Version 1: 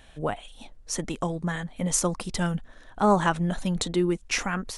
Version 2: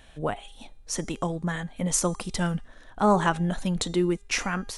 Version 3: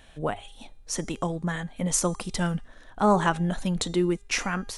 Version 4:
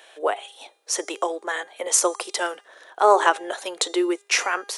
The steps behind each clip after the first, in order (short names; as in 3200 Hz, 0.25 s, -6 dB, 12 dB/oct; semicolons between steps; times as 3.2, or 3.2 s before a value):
de-hum 404 Hz, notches 26
notches 50/100 Hz
steep high-pass 360 Hz 48 dB/oct; gain +6.5 dB